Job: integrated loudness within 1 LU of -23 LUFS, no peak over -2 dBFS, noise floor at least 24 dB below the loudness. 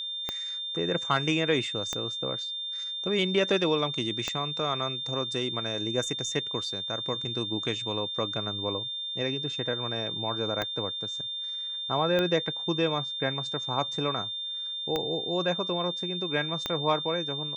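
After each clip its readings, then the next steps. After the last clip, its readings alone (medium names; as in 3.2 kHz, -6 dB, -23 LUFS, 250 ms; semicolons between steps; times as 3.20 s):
clicks found 7; steady tone 3.6 kHz; tone level -32 dBFS; loudness -29.0 LUFS; peak level -12.0 dBFS; loudness target -23.0 LUFS
-> de-click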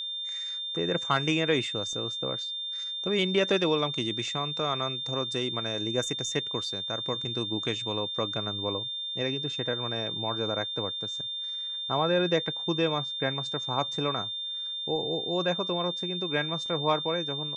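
clicks found 0; steady tone 3.6 kHz; tone level -32 dBFS
-> band-stop 3.6 kHz, Q 30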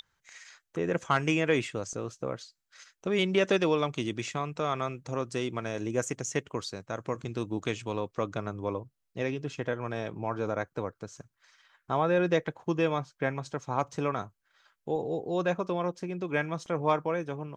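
steady tone not found; loudness -31.5 LUFS; peak level -12.0 dBFS; loudness target -23.0 LUFS
-> trim +8.5 dB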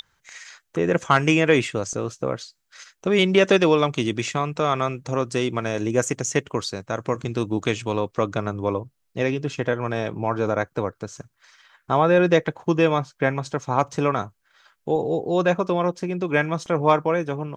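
loudness -23.0 LUFS; peak level -3.5 dBFS; noise floor -72 dBFS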